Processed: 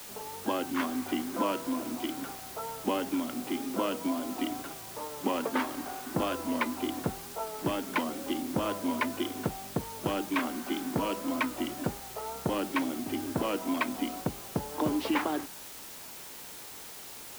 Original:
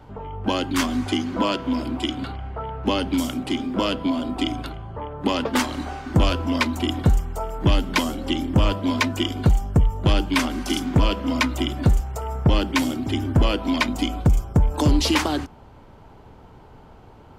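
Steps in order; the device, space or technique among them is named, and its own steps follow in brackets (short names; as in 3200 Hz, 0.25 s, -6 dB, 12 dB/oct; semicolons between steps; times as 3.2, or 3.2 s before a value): wax cylinder (BPF 250–2100 Hz; wow and flutter; white noise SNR 12 dB); gain -6 dB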